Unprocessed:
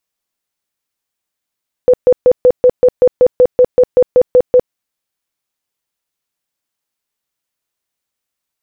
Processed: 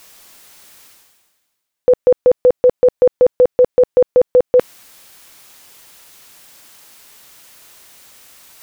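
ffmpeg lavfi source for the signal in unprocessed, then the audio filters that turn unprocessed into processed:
-f lavfi -i "aevalsrc='0.668*sin(2*PI*500*mod(t,0.19))*lt(mod(t,0.19),28/500)':duration=2.85:sample_rate=44100"
-af "lowshelf=frequency=380:gain=-4,areverse,acompressor=mode=upward:threshold=-17dB:ratio=2.5,areverse"

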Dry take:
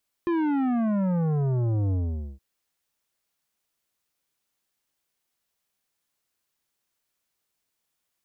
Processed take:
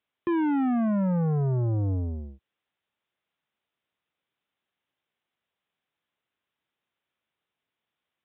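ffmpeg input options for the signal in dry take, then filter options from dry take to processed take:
-f lavfi -i "aevalsrc='0.0708*clip((2.12-t)/0.47,0,1)*tanh(3.76*sin(2*PI*350*2.12/log(65/350)*(exp(log(65/350)*t/2.12)-1)))/tanh(3.76)':duration=2.12:sample_rate=44100"
-af "highpass=79,aresample=8000,aresample=44100"

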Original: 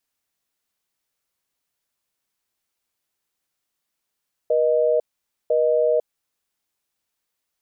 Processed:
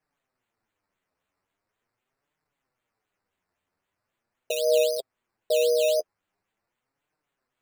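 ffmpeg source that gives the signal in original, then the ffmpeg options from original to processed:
-f lavfi -i "aevalsrc='0.119*(sin(2*PI*480*t)+sin(2*PI*620*t))*clip(min(mod(t,1),0.5-mod(t,1))/0.005,0,1)':duration=1.75:sample_rate=44100"
-af "acrusher=samples=11:mix=1:aa=0.000001:lfo=1:lforange=6.6:lforate=3.8,flanger=delay=6.4:depth=5.2:regen=14:speed=0.42:shape=triangular"

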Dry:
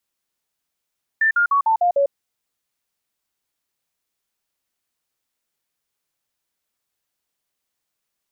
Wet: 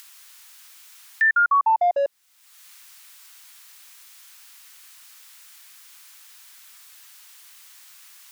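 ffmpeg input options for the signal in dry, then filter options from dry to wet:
-f lavfi -i "aevalsrc='0.211*clip(min(mod(t,0.15),0.1-mod(t,0.15))/0.005,0,1)*sin(2*PI*1780*pow(2,-floor(t/0.15)/3)*mod(t,0.15))':duration=0.9:sample_rate=44100"
-filter_complex "[0:a]acrossover=split=600|880[link_01][link_02][link_03];[link_01]asoftclip=type=tanh:threshold=-32dB[link_04];[link_03]acompressor=mode=upward:threshold=-23dB:ratio=2.5[link_05];[link_04][link_02][link_05]amix=inputs=3:normalize=0"

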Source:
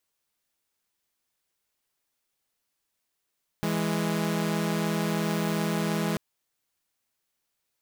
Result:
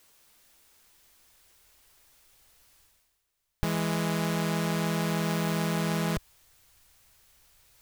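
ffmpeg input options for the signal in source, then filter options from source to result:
-f lavfi -i "aevalsrc='0.0531*((2*mod(164.81*t,1)-1)+(2*mod(207.65*t,1)-1))':duration=2.54:sample_rate=44100"
-af "asubboost=boost=8:cutoff=84,areverse,acompressor=mode=upward:threshold=-45dB:ratio=2.5,areverse"

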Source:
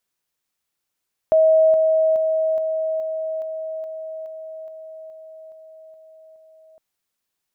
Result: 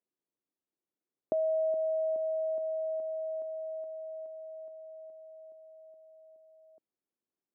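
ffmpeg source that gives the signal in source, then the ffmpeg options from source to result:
-f lavfi -i "aevalsrc='pow(10,(-11-3*floor(t/0.42))/20)*sin(2*PI*637*t)':duration=5.46:sample_rate=44100"
-af "acompressor=threshold=-23dB:ratio=2,bandpass=frequency=320:width_type=q:width=1.8:csg=0"

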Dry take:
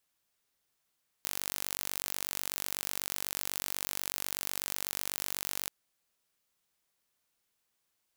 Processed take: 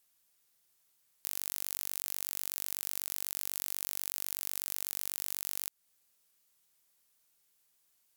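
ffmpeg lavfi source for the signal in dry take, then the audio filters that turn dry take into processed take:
-f lavfi -i "aevalsrc='0.422*eq(mod(n,917),0)':duration=4.43:sample_rate=44100"
-af "aemphasis=mode=production:type=cd,alimiter=limit=-10.5dB:level=0:latency=1:release=225"

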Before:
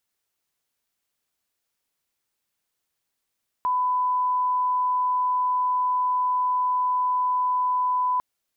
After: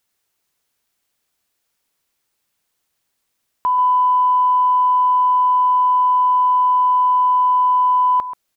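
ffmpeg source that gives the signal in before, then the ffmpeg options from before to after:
-f lavfi -i "sine=frequency=1000:duration=4.55:sample_rate=44100,volume=-1.94dB"
-filter_complex "[0:a]asplit=2[link_01][link_02];[link_02]adelay=134.1,volume=-11dB,highshelf=frequency=4000:gain=-3.02[link_03];[link_01][link_03]amix=inputs=2:normalize=0,acontrast=80"

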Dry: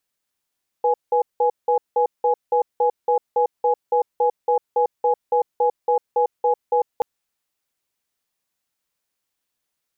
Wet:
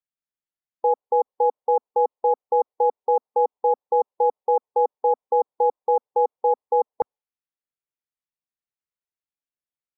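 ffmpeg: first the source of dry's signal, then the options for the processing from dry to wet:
-f lavfi -i "aevalsrc='0.133*(sin(2*PI*489*t)+sin(2*PI*835*t))*clip(min(mod(t,0.28),0.1-mod(t,0.28))/0.005,0,1)':duration=6.18:sample_rate=44100"
-af "afftdn=noise_reduction=17:noise_floor=-40,bass=frequency=250:gain=3,treble=frequency=4000:gain=-12"

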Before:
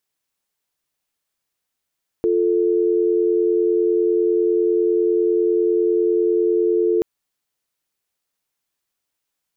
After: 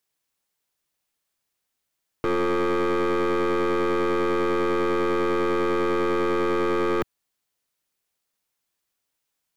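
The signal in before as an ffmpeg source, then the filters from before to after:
-f lavfi -i "aevalsrc='0.133*(sin(2*PI*350*t)+sin(2*PI*440*t))':duration=4.78:sample_rate=44100"
-filter_complex "[0:a]acrossover=split=110|300[link_01][link_02][link_03];[link_03]aeval=exprs='0.0794*(abs(mod(val(0)/0.0794+3,4)-2)-1)':channel_layout=same[link_04];[link_01][link_02][link_04]amix=inputs=3:normalize=0,aeval=exprs='0.178*(cos(1*acos(clip(val(0)/0.178,-1,1)))-cos(1*PI/2))+0.0316*(cos(4*acos(clip(val(0)/0.178,-1,1)))-cos(4*PI/2))':channel_layout=same"

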